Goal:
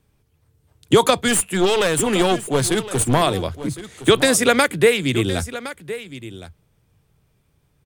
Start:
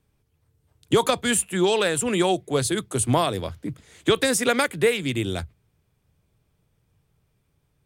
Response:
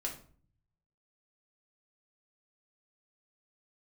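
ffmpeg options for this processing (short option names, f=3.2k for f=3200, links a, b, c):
-filter_complex "[0:a]asettb=1/sr,asplit=3[a][b][c];[a]atrim=end=1.284[d];[b]atrim=start=1.28:end=3.22,asetpts=PTS-STARTPTS,afade=t=in:d=0.004:c=qsin,afade=t=out:st=1.936:d=0.004:c=qsin,aeval=exprs='clip(val(0),-1,0.0631)':c=same[e];[c]atrim=start=3.216[f];[d][e]acrossfade=d=0.004:c1=hsin:c2=qsin[g];[g][f]acrossfade=d=0.004:c1=qsin:c2=hsin,aecho=1:1:1065:0.188,volume=5.5dB"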